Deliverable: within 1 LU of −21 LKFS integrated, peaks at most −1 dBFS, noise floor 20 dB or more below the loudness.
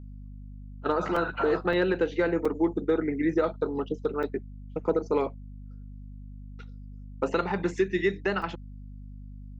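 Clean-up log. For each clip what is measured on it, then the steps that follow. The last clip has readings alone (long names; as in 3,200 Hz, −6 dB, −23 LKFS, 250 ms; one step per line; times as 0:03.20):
number of dropouts 5; longest dropout 4.1 ms; mains hum 50 Hz; hum harmonics up to 250 Hz; level of the hum −40 dBFS; integrated loudness −28.0 LKFS; sample peak −13.5 dBFS; target loudness −21.0 LKFS
→ repair the gap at 0:01.16/0:01.73/0:02.45/0:04.23/0:08.42, 4.1 ms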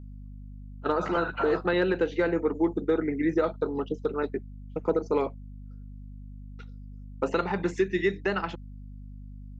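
number of dropouts 0; mains hum 50 Hz; hum harmonics up to 250 Hz; level of the hum −40 dBFS
→ hum removal 50 Hz, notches 5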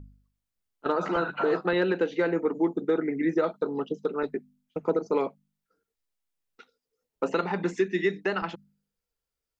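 mains hum none found; integrated loudness −28.0 LKFS; sample peak −13.5 dBFS; target loudness −21.0 LKFS
→ level +7 dB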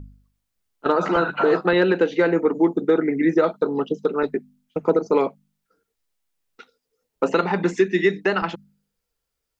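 integrated loudness −21.0 LKFS; sample peak −6.5 dBFS; background noise floor −80 dBFS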